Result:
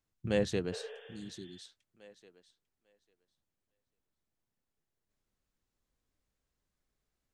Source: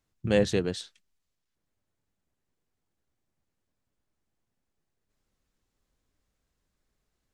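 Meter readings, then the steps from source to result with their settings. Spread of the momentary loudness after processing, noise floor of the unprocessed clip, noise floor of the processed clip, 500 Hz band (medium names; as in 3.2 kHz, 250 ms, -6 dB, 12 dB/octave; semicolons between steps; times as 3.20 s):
19 LU, -82 dBFS, under -85 dBFS, -6.5 dB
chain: thinning echo 847 ms, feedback 16%, high-pass 280 Hz, level -7 dB; spectral replace 0.75–1.56 s, 400–3600 Hz both; trim -6.5 dB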